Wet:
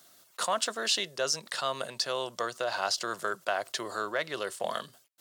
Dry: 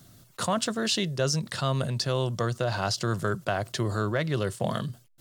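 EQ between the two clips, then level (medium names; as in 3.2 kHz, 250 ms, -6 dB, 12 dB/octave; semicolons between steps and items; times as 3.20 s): high-pass 560 Hz 12 dB/octave; 0.0 dB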